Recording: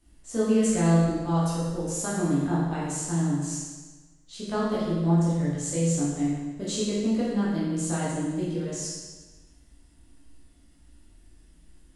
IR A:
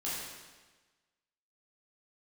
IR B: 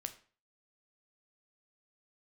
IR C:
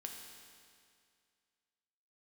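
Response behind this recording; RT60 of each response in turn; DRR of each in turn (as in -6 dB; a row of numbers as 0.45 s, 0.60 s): A; 1.3 s, 0.40 s, 2.2 s; -9.0 dB, 7.5 dB, 1.5 dB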